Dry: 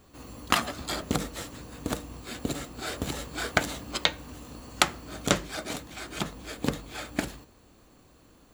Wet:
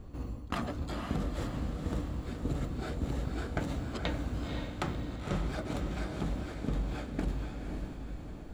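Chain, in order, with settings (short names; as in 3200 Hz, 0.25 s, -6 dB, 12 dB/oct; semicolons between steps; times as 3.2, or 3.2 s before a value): tilt -3.5 dB/oct; reverse; compressor 6:1, threshold -32 dBFS, peak gain reduction 18 dB; reverse; diffused feedback echo 0.515 s, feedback 51%, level -4 dB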